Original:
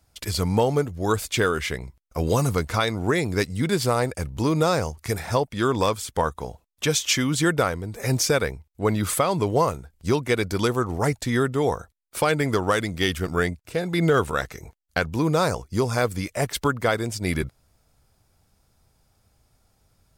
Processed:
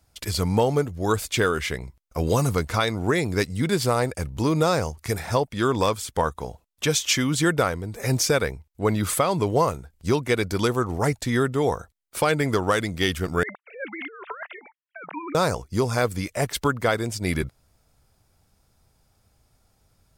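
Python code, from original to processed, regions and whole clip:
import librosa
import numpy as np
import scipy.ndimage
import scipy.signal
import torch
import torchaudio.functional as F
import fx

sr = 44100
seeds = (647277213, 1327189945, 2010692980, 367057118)

y = fx.chain(x, sr, fx.sine_speech(),
    fx.highpass(hz=630.0, slope=12),
    fx.over_compress(threshold_db=-36.0, ratio=-1.0), at=(13.43, 15.35))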